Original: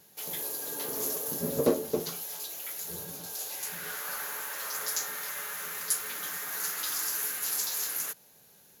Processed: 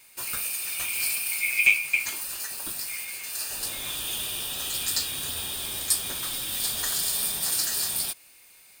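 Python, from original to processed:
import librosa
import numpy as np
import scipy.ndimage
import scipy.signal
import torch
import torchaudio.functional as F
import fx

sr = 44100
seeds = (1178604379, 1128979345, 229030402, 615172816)

y = fx.band_swap(x, sr, width_hz=2000)
y = y * 10.0 ** (5.0 / 20.0)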